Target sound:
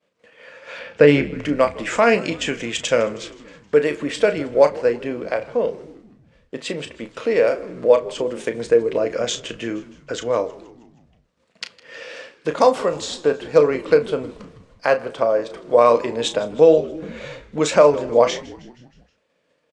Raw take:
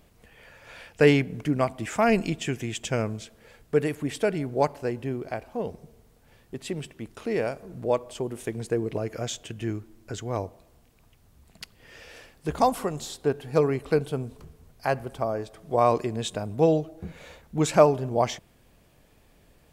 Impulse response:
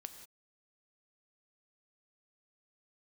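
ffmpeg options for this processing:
-filter_complex "[0:a]asettb=1/sr,asplit=3[link_01][link_02][link_03];[link_01]atrim=end=0.794[link_04];[link_02]atrim=start=0.79:end=1.34,asetpts=PTS-STARTPTS,afade=type=in:duration=0.004:curve=qsin,afade=type=out:start_time=0.546:duration=0.004:curve=qsin,aemphasis=mode=reproduction:type=bsi[link_05];[link_03]atrim=start=1.336[link_06];[link_04][link_05]acrossfade=duration=0.004:curve1=hsin:curve2=qsin[link_07];[link_07][link_06]acrossfade=duration=0.004:curve1=qsin:curve2=hsin,agate=range=-33dB:threshold=-47dB:ratio=3:detection=peak,asplit=2[link_08][link_09];[link_09]acompressor=threshold=-30dB:ratio=6,volume=-3dB[link_10];[link_08][link_10]amix=inputs=2:normalize=0,flanger=delay=5.4:depth=1.2:regen=87:speed=1.3:shape=sinusoidal,adynamicsmooth=sensitivity=3.5:basefreq=6100,highpass=320,equalizer=frequency=370:width_type=q:width=4:gain=-7,equalizer=frequency=520:width_type=q:width=4:gain=8,equalizer=frequency=770:width_type=q:width=4:gain=-9,lowpass=frequency=9100:width=0.5412,lowpass=frequency=9100:width=1.3066,asplit=2[link_11][link_12];[link_12]adelay=34,volume=-10dB[link_13];[link_11][link_13]amix=inputs=2:normalize=0,asplit=2[link_14][link_15];[link_15]asplit=5[link_16][link_17][link_18][link_19][link_20];[link_16]adelay=158,afreqshift=-87,volume=-20.5dB[link_21];[link_17]adelay=316,afreqshift=-174,volume=-25.2dB[link_22];[link_18]adelay=474,afreqshift=-261,volume=-30dB[link_23];[link_19]adelay=632,afreqshift=-348,volume=-34.7dB[link_24];[link_20]adelay=790,afreqshift=-435,volume=-39.4dB[link_25];[link_21][link_22][link_23][link_24][link_25]amix=inputs=5:normalize=0[link_26];[link_14][link_26]amix=inputs=2:normalize=0,alimiter=level_in=12.5dB:limit=-1dB:release=50:level=0:latency=1,volume=-1dB"

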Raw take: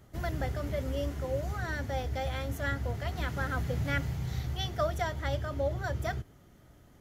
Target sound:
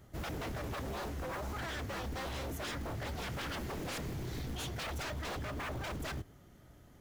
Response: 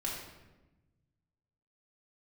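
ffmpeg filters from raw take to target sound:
-af "acrusher=bits=7:mode=log:mix=0:aa=0.000001,aeval=exprs='0.0211*(abs(mod(val(0)/0.0211+3,4)-2)-1)':channel_layout=same,volume=-1dB"

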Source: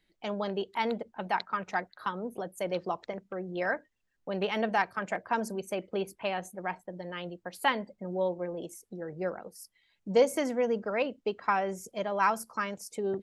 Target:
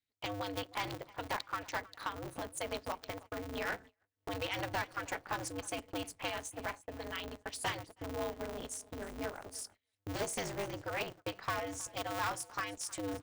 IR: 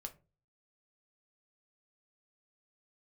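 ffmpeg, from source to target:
-af "areverse,acompressor=mode=upward:threshold=-48dB:ratio=2.5,areverse,highshelf=frequency=2400:gain=11.5,asoftclip=type=hard:threshold=-19.5dB,asubboost=boost=3.5:cutoff=100,acompressor=threshold=-52dB:ratio=2,bandreject=frequency=470:width=12,aecho=1:1:316|632|948:0.0944|0.0349|0.0129,agate=range=-29dB:threshold=-57dB:ratio=16:detection=peak,aresample=22050,aresample=44100,aeval=exprs='val(0)*sgn(sin(2*PI*100*n/s))':channel_layout=same,volume=5.5dB"

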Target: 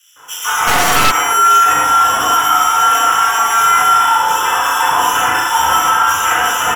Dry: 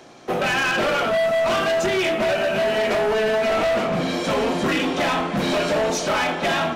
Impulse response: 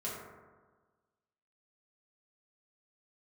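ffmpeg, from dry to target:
-filter_complex "[0:a]equalizer=frequency=160:width_type=o:width=0.67:gain=-8,equalizer=frequency=400:width_type=o:width=0.67:gain=-11,equalizer=frequency=1600:width_type=o:width=0.67:gain=-11,lowpass=frequency=3100:width_type=q:width=0.5098,lowpass=frequency=3100:width_type=q:width=0.6013,lowpass=frequency=3100:width_type=q:width=0.9,lowpass=frequency=3100:width_type=q:width=2.563,afreqshift=-3700,acrusher=samples=10:mix=1:aa=0.000001,acrossover=split=2900[link_01][link_02];[link_01]adelay=160[link_03];[link_03][link_02]amix=inputs=2:normalize=0[link_04];[1:a]atrim=start_sample=2205,afade=type=out:start_time=0.16:duration=0.01,atrim=end_sample=7497,asetrate=30870,aresample=44100[link_05];[link_04][link_05]afir=irnorm=-1:irlink=0,asplit=3[link_06][link_07][link_08];[link_06]afade=type=out:start_time=0.67:duration=0.02[link_09];[link_07]aeval=exprs='0.335*(cos(1*acos(clip(val(0)/0.335,-1,1)))-cos(1*PI/2))+0.15*(cos(5*acos(clip(val(0)/0.335,-1,1)))-cos(5*PI/2))+0.168*(cos(6*acos(clip(val(0)/0.335,-1,1)))-cos(6*PI/2))':channel_layout=same,afade=type=in:start_time=0.67:duration=0.02,afade=type=out:start_time=1.1:duration=0.02[link_10];[link_08]afade=type=in:start_time=1.1:duration=0.02[link_11];[link_09][link_10][link_11]amix=inputs=3:normalize=0,alimiter=level_in=11dB:limit=-1dB:release=50:level=0:latency=1,volume=-1dB"

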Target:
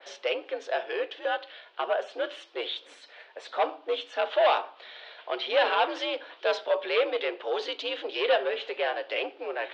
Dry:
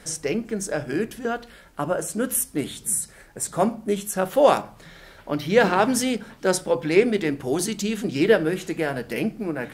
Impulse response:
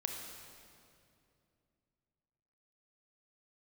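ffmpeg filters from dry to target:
-af "asoftclip=type=tanh:threshold=-17dB,aexciter=amount=2.8:drive=5.8:freq=2700,highpass=frequency=390:width_type=q:width=0.5412,highpass=frequency=390:width_type=q:width=1.307,lowpass=frequency=3600:width_type=q:width=0.5176,lowpass=frequency=3600:width_type=q:width=0.7071,lowpass=frequency=3600:width_type=q:width=1.932,afreqshift=74,adynamicequalizer=threshold=0.0112:dfrequency=2300:dqfactor=0.7:tfrequency=2300:tqfactor=0.7:attack=5:release=100:ratio=0.375:range=2:mode=cutabove:tftype=highshelf"

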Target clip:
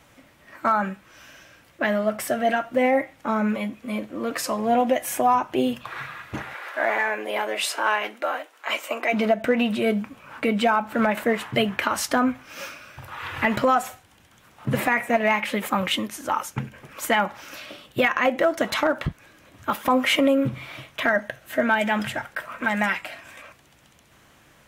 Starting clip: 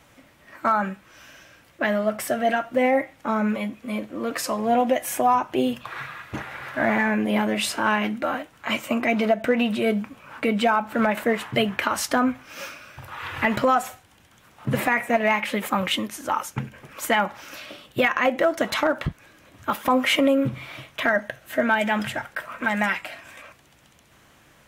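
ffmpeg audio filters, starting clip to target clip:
ffmpeg -i in.wav -filter_complex "[0:a]asplit=3[link_01][link_02][link_03];[link_01]afade=type=out:start_time=6.53:duration=0.02[link_04];[link_02]highpass=frequency=390:width=0.5412,highpass=frequency=390:width=1.3066,afade=type=in:start_time=6.53:duration=0.02,afade=type=out:start_time=9.12:duration=0.02[link_05];[link_03]afade=type=in:start_time=9.12:duration=0.02[link_06];[link_04][link_05][link_06]amix=inputs=3:normalize=0" out.wav

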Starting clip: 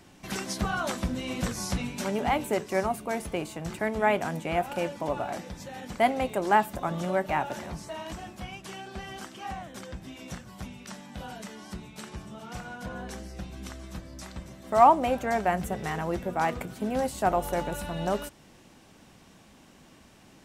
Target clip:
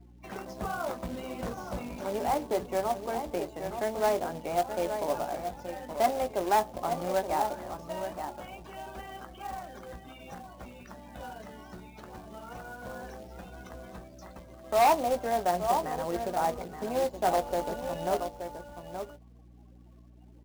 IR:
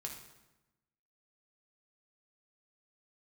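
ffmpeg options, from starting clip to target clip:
-filter_complex "[0:a]asplit=2[link_01][link_02];[link_02]adelay=874.6,volume=-8dB,highshelf=frequency=4000:gain=-19.7[link_03];[link_01][link_03]amix=inputs=2:normalize=0,acrossover=split=260|1100[link_04][link_05][link_06];[link_06]acompressor=threshold=-48dB:ratio=6[link_07];[link_04][link_05][link_07]amix=inputs=3:normalize=0,asplit=2[link_08][link_09];[link_09]adelay=17,volume=-10.5dB[link_10];[link_08][link_10]amix=inputs=2:normalize=0,aresample=16000,asoftclip=type=hard:threshold=-17.5dB,aresample=44100,afftdn=noise_reduction=23:noise_floor=-49,bass=frequency=250:gain=-14,treble=frequency=4000:gain=-5,acrusher=bits=3:mode=log:mix=0:aa=0.000001,lowshelf=frequency=77:gain=5.5,aeval=exprs='val(0)+0.00224*(sin(2*PI*60*n/s)+sin(2*PI*2*60*n/s)/2+sin(2*PI*3*60*n/s)/3+sin(2*PI*4*60*n/s)/4+sin(2*PI*5*60*n/s)/5)':channel_layout=same"

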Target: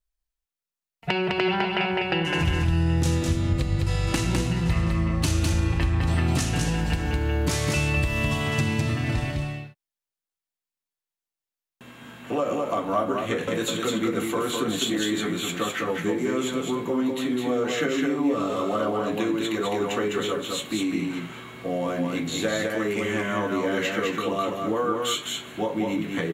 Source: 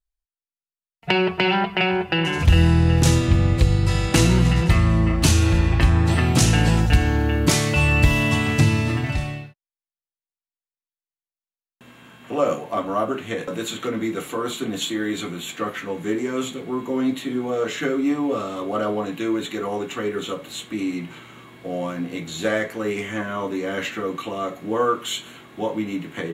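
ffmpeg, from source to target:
ffmpeg -i in.wav -filter_complex "[0:a]acompressor=threshold=-24dB:ratio=6,asplit=2[link_01][link_02];[link_02]aecho=0:1:206:0.668[link_03];[link_01][link_03]amix=inputs=2:normalize=0,volume=1.5dB" out.wav

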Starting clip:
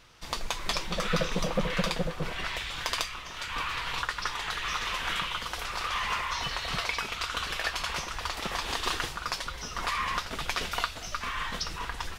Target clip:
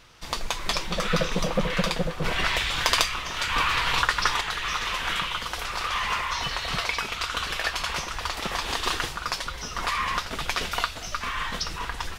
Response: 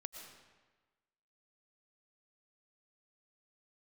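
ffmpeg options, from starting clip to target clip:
-filter_complex "[0:a]asettb=1/sr,asplit=3[link_01][link_02][link_03];[link_01]atrim=end=2.244[link_04];[link_02]atrim=start=2.24:end=4.41,asetpts=PTS-STARTPTS,afade=type=in:duration=0.004:curve=qsin,afade=type=out:start_time=2.166:duration=0.004:curve=qsin,acontrast=37[link_05];[link_03]atrim=start=4.406[link_06];[link_04][link_05]acrossfade=duration=0.004:curve1=hsin:curve2=qsin[link_07];[link_07][link_06]acrossfade=duration=0.004:curve1=qsin:curve2=hsin,volume=3.5dB"

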